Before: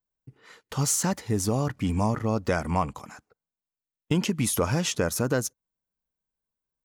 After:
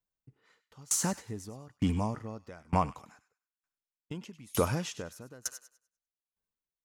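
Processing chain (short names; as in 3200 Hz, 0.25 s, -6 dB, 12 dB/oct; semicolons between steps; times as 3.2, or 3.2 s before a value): high shelf 8800 Hz -4.5 dB; on a send: thin delay 99 ms, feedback 39%, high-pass 1600 Hz, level -10 dB; on the sum: dB-ramp tremolo decaying 1.1 Hz, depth 29 dB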